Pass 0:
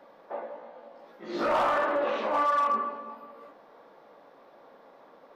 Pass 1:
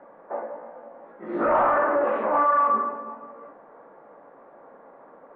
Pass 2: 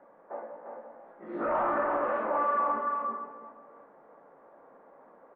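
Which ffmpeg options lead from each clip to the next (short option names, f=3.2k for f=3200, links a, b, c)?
-af "lowpass=f=1.8k:w=0.5412,lowpass=f=1.8k:w=1.3066,volume=5dB"
-af "aecho=1:1:347:0.631,volume=-8dB"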